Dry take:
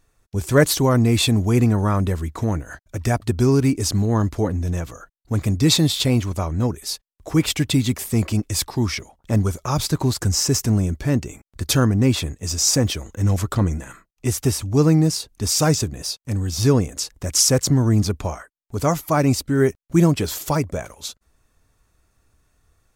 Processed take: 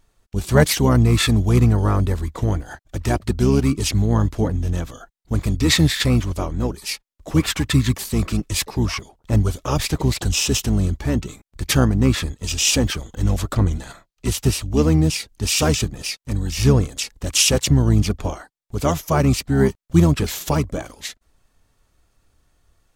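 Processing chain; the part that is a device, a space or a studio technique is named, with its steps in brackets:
octave pedal (pitch-shifted copies added −12 semitones −3 dB)
0:13.75–0:14.26: parametric band 4,200 Hz +6 dB
level −1 dB

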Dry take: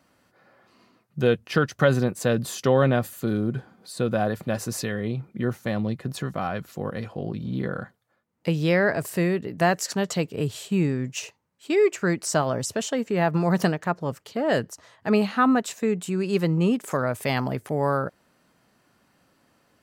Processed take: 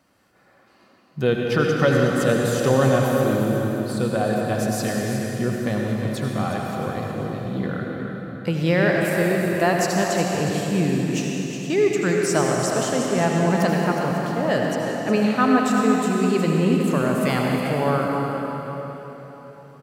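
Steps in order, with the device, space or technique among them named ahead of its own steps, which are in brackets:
cave (single-tap delay 362 ms −9.5 dB; convolution reverb RT60 4.0 s, pre-delay 70 ms, DRR −1 dB)

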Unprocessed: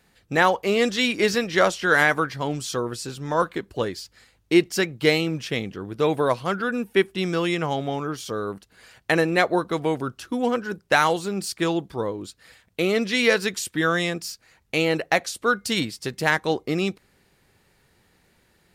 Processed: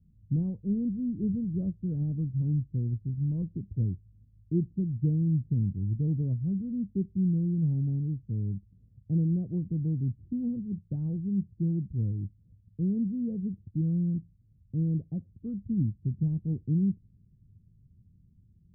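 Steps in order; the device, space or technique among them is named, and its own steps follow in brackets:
the neighbour's flat through the wall (low-pass filter 190 Hz 24 dB per octave; parametric band 99 Hz +7 dB 0.6 octaves)
level +5 dB

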